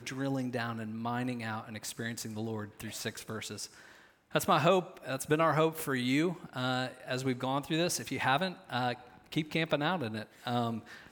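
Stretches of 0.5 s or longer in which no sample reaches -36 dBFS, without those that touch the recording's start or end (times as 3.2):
3.65–4.35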